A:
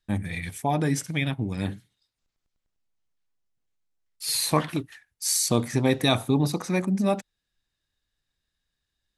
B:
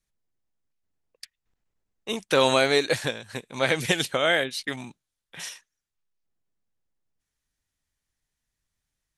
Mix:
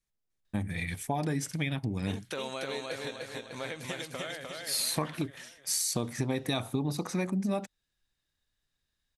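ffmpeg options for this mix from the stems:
-filter_complex "[0:a]adelay=450,volume=0.841[s0];[1:a]acompressor=threshold=0.0178:ratio=2.5,volume=0.562,afade=t=out:st=4.03:d=0.59:silence=0.446684,asplit=2[s1][s2];[s2]volume=0.708,aecho=0:1:302|604|906|1208|1510|1812|2114:1|0.5|0.25|0.125|0.0625|0.0312|0.0156[s3];[s0][s1][s3]amix=inputs=3:normalize=0,acompressor=threshold=0.0447:ratio=6"

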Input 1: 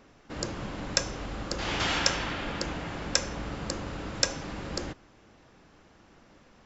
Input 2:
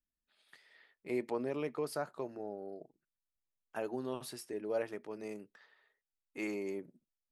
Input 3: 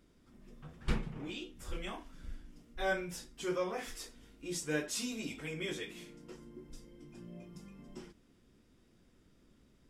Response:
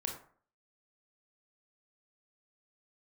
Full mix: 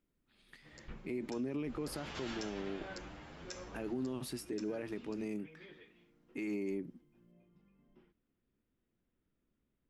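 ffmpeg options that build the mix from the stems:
-filter_complex "[0:a]asplit=2[s0][s1];[s1]adelay=8.9,afreqshift=1.6[s2];[s0][s2]amix=inputs=2:normalize=1,adelay=350,volume=0.237,afade=t=in:st=1.57:d=0.33:silence=0.375837,afade=t=out:st=3.78:d=0.47:silence=0.375837[s3];[1:a]equalizer=f=2400:t=o:w=0.77:g=4,alimiter=level_in=1.78:limit=0.0631:level=0:latency=1,volume=0.562,lowshelf=f=390:t=q:w=1.5:g=8,volume=1[s4];[2:a]lowpass=f=3200:w=0.5412,lowpass=f=3200:w=1.3066,volume=0.15[s5];[s3][s4][s5]amix=inputs=3:normalize=0,alimiter=level_in=2.11:limit=0.0631:level=0:latency=1:release=48,volume=0.473"

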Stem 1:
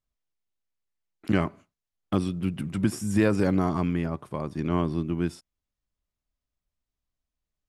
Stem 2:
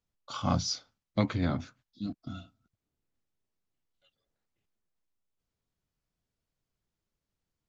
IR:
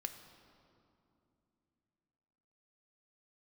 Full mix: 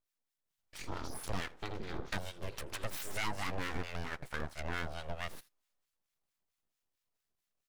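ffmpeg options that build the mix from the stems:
-filter_complex "[0:a]highpass=510,aeval=exprs='0.224*sin(PI/2*1.58*val(0)/0.224)':c=same,volume=1.12,asplit=2[s0][s1];[s1]volume=0.0708[s2];[1:a]adelay=450,volume=0.794,asplit=2[s3][s4];[s4]volume=0.473[s5];[s2][s5]amix=inputs=2:normalize=0,aecho=0:1:81:1[s6];[s0][s3][s6]amix=inputs=3:normalize=0,aeval=exprs='abs(val(0))':c=same,acrossover=split=1100[s7][s8];[s7]aeval=exprs='val(0)*(1-0.7/2+0.7/2*cos(2*PI*4.5*n/s))':c=same[s9];[s8]aeval=exprs='val(0)*(1-0.7/2-0.7/2*cos(2*PI*4.5*n/s))':c=same[s10];[s9][s10]amix=inputs=2:normalize=0,acompressor=threshold=0.0126:ratio=2"

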